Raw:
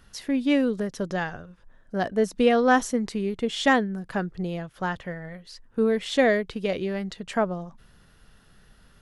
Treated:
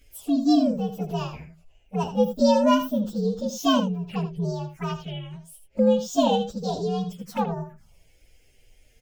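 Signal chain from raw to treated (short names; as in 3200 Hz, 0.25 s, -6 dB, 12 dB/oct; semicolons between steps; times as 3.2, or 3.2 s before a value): inharmonic rescaling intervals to 125%; envelope phaser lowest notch 160 Hz, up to 2100 Hz, full sweep at -29.5 dBFS; echo 80 ms -11 dB; gain +3.5 dB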